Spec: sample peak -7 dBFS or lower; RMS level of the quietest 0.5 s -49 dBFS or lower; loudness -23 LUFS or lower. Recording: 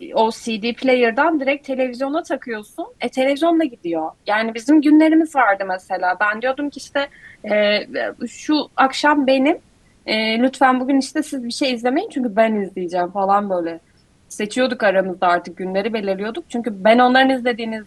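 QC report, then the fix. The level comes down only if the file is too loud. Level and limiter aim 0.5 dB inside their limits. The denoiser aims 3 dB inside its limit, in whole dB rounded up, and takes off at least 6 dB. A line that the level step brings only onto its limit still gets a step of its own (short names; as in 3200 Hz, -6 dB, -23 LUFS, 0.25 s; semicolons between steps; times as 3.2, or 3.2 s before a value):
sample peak -2.0 dBFS: fail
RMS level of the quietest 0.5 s -55 dBFS: OK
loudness -18.5 LUFS: fail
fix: gain -5 dB; limiter -7.5 dBFS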